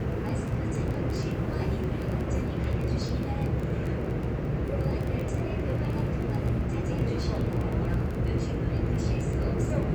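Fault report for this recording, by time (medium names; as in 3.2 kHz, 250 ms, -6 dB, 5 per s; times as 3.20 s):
crackle 15 per s -31 dBFS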